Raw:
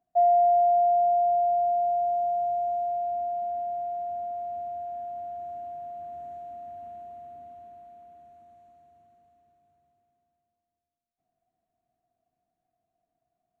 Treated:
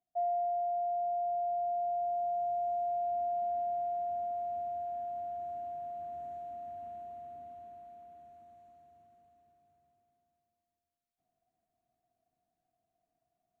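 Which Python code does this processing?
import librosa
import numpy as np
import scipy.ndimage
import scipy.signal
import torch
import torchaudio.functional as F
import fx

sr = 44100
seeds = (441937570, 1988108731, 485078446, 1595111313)

y = fx.rider(x, sr, range_db=5, speed_s=0.5)
y = y * 10.0 ** (-7.5 / 20.0)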